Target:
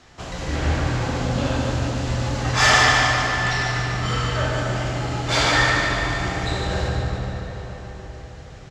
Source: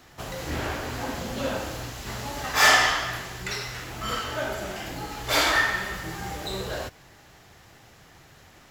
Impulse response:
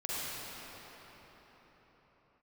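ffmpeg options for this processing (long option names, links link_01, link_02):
-filter_complex "[0:a]lowpass=frequency=7900:width=0.5412,lowpass=frequency=7900:width=1.3066,equalizer=frequency=76:width_type=o:width=0.77:gain=4,bandreject=frequency=65.89:width_type=h:width=4,bandreject=frequency=131.78:width_type=h:width=4,bandreject=frequency=197.67:width_type=h:width=4,bandreject=frequency=263.56:width_type=h:width=4,bandreject=frequency=329.45:width_type=h:width=4,bandreject=frequency=395.34:width_type=h:width=4,bandreject=frequency=461.23:width_type=h:width=4,bandreject=frequency=527.12:width_type=h:width=4,bandreject=frequency=593.01:width_type=h:width=4,bandreject=frequency=658.9:width_type=h:width=4,bandreject=frequency=724.79:width_type=h:width=4,bandreject=frequency=790.68:width_type=h:width=4,bandreject=frequency=856.57:width_type=h:width=4,bandreject=frequency=922.46:width_type=h:width=4,bandreject=frequency=988.35:width_type=h:width=4,bandreject=frequency=1054.24:width_type=h:width=4,bandreject=frequency=1120.13:width_type=h:width=4,bandreject=frequency=1186.02:width_type=h:width=4,bandreject=frequency=1251.91:width_type=h:width=4,bandreject=frequency=1317.8:width_type=h:width=4,bandreject=frequency=1383.69:width_type=h:width=4,bandreject=frequency=1449.58:width_type=h:width=4,bandreject=frequency=1515.47:width_type=h:width=4,bandreject=frequency=1581.36:width_type=h:width=4,bandreject=frequency=1647.25:width_type=h:width=4,bandreject=frequency=1713.14:width_type=h:width=4,bandreject=frequency=1779.03:width_type=h:width=4,bandreject=frequency=1844.92:width_type=h:width=4,bandreject=frequency=1910.81:width_type=h:width=4,bandreject=frequency=1976.7:width_type=h:width=4,bandreject=frequency=2042.59:width_type=h:width=4,bandreject=frequency=2108.48:width_type=h:width=4,bandreject=frequency=2174.37:width_type=h:width=4,bandreject=frequency=2240.26:width_type=h:width=4,bandreject=frequency=2306.15:width_type=h:width=4,bandreject=frequency=2372.04:width_type=h:width=4,bandreject=frequency=2437.93:width_type=h:width=4,bandreject=frequency=2503.82:width_type=h:width=4,asoftclip=type=tanh:threshold=-7.5dB,aecho=1:1:147|294|441|588|735|882|1029:0.501|0.276|0.152|0.0834|0.0459|0.0252|0.0139,asplit=2[link_01][link_02];[1:a]atrim=start_sample=2205,lowshelf=frequency=290:gain=10.5,adelay=27[link_03];[link_02][link_03]afir=irnorm=-1:irlink=0,volume=-9dB[link_04];[link_01][link_04]amix=inputs=2:normalize=0,volume=2dB"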